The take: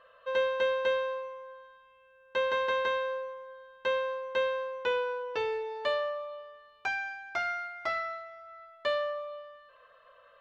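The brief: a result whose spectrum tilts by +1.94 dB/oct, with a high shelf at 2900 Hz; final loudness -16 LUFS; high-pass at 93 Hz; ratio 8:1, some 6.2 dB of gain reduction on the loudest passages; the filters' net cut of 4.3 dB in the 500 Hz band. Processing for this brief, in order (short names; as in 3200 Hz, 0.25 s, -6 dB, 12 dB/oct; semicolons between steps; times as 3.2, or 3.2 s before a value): HPF 93 Hz; bell 500 Hz -4.5 dB; high shelf 2900 Hz -3 dB; compressor 8:1, threshold -34 dBFS; gain +23 dB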